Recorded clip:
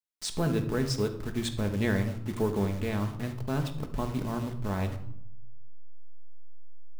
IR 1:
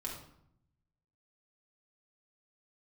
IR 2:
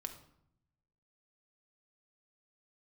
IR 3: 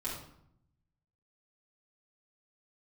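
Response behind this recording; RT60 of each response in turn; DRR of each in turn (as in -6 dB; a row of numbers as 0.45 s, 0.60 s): 2; 0.70 s, 0.75 s, 0.70 s; -4.0 dB, 5.0 dB, -9.5 dB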